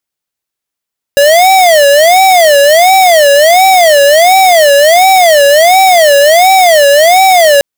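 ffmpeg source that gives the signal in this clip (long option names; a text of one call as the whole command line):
ffmpeg -f lavfi -i "aevalsrc='0.596*(2*lt(mod((665*t-103/(2*PI*1.4)*sin(2*PI*1.4*t)),1),0.5)-1)':duration=6.44:sample_rate=44100" out.wav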